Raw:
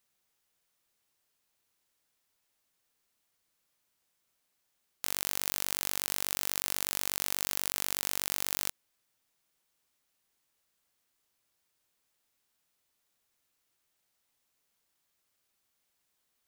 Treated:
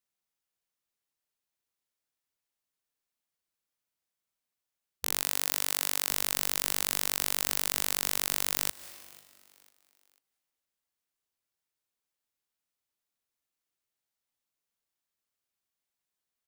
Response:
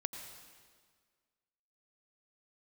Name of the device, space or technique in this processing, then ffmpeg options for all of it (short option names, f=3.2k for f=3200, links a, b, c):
ducked reverb: -filter_complex "[0:a]afwtdn=0.00891,asplit=3[a][b][c];[1:a]atrim=start_sample=2205[d];[b][d]afir=irnorm=-1:irlink=0[e];[c]apad=whole_len=726750[f];[e][f]sidechaincompress=threshold=-45dB:ratio=8:attack=16:release=123,volume=-5dB[g];[a][g]amix=inputs=2:normalize=0,asettb=1/sr,asplit=3[h][i][j];[h]atrim=end=5.224[k];[i]atrim=start=5.22:end=6.1,asetpts=PTS-STARTPTS,afade=t=in:d=0.004:c=qsin,afade=t=out:st=0.876:d=0.004:c=qsin,highpass=f=250:p=1[l];[j]atrim=start=6.096[m];[k][l]acrossfade=d=0.004:c1=hsin:c2=qsin[n];[n][m]acrossfade=d=0.004:c1=qsin:c2=hsin,asplit=4[o][p][q][r];[p]adelay=495,afreqshift=71,volume=-23.5dB[s];[q]adelay=990,afreqshift=142,volume=-31.7dB[t];[r]adelay=1485,afreqshift=213,volume=-39.9dB[u];[o][s][t][u]amix=inputs=4:normalize=0,volume=2.5dB"